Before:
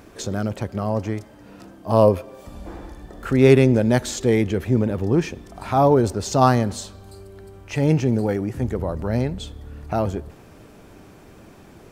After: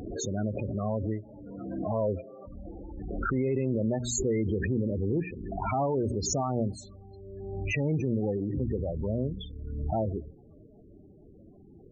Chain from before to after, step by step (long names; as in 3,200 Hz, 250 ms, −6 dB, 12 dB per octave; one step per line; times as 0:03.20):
spectral peaks only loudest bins 16
mains-hum notches 60/120/180/240/300 Hz
brickwall limiter −14 dBFS, peak gain reduction 11.5 dB
background raised ahead of every attack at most 33 dB per second
level −6 dB